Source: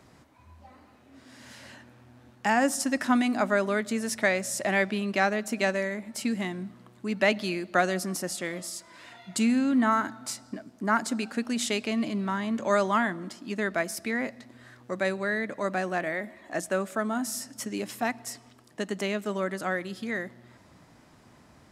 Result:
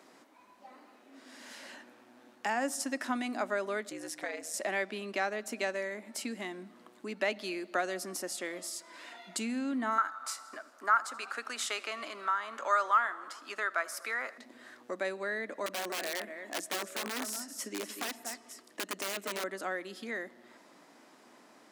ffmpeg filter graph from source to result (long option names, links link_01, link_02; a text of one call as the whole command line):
ffmpeg -i in.wav -filter_complex "[0:a]asettb=1/sr,asplit=3[link_01][link_02][link_03];[link_01]atrim=end=3.894[link_04];[link_02]atrim=start=3.89:end=4.54,asetpts=PTS-STARTPTS,afade=type=in:duration=0.004:curve=qsin,afade=type=out:start_time=0.646:duration=0.004:curve=qsin,acompressor=threshold=-35dB:ratio=1.5:attack=3.2:release=140:knee=1:detection=peak,aeval=exprs='val(0)*sin(2*PI*81*n/s)':channel_layout=same[link_05];[link_03]atrim=start=4.536[link_06];[link_04][link_05]acrossfade=duration=0.004:curve1=hsin:curve2=qsin[link_07];[link_07][link_06]acrossfade=duration=0.004:curve1=qsin:curve2=hsin,asettb=1/sr,asplit=3[link_08][link_09][link_10];[link_08]atrim=end=9.984[link_11];[link_09]atrim=start=9.98:end=14.38,asetpts=PTS-STARTPTS,afade=type=in:duration=0.004:curve=qsin,afade=type=out:start_time=4.396:duration=0.004:curve=qsin,highpass=620,equalizer=frequency=1300:width_type=o:width=0.55:gain=14,asplit=6[link_12][link_13][link_14][link_15][link_16][link_17];[link_13]adelay=80,afreqshift=-47,volume=-21dB[link_18];[link_14]adelay=160,afreqshift=-94,volume=-25.7dB[link_19];[link_15]adelay=240,afreqshift=-141,volume=-30.5dB[link_20];[link_16]adelay=320,afreqshift=-188,volume=-35.2dB[link_21];[link_17]adelay=400,afreqshift=-235,volume=-39.9dB[link_22];[link_12][link_18][link_19][link_20][link_21][link_22]amix=inputs=6:normalize=0,atrim=end_sample=194040[link_23];[link_10]atrim=start=14.376[link_24];[link_11][link_23]acrossfade=duration=0.004:curve1=hsin:curve2=qsin[link_25];[link_25][link_24]acrossfade=duration=0.004:curve1=qsin:curve2=hsin,asettb=1/sr,asplit=3[link_26][link_27][link_28];[link_26]atrim=end=15.664[link_29];[link_27]atrim=start=15.66:end=19.44,asetpts=PTS-STARTPTS,afade=type=in:duration=0.004:curve=qsin,afade=type=out:start_time=3.776:duration=0.004:curve=qsin,equalizer=frequency=800:width=4.9:gain=-5,aecho=1:1:238:0.282,atrim=end_sample=166698,aeval=exprs='(mod(15*val(0)+1,2)-1)/15':channel_layout=same[link_30];[link_28]atrim=start=19.436[link_31];[link_29][link_30]acrossfade=duration=0.004:curve1=hsin:curve2=qsin[link_32];[link_32][link_31]acrossfade=duration=0.004:curve1=qsin:curve2=hsin,acompressor=threshold=-41dB:ratio=1.5,highpass=frequency=260:width=0.5412,highpass=frequency=260:width=1.3066" out.wav